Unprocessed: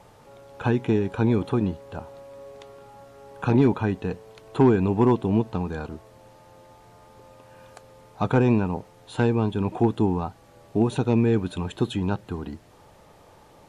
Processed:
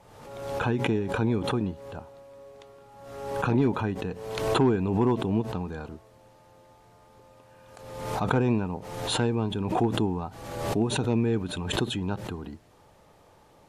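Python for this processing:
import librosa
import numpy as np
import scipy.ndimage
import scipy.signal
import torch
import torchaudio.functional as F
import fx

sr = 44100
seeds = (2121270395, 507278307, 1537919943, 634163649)

y = fx.pre_swell(x, sr, db_per_s=48.0)
y = y * 10.0 ** (-5.0 / 20.0)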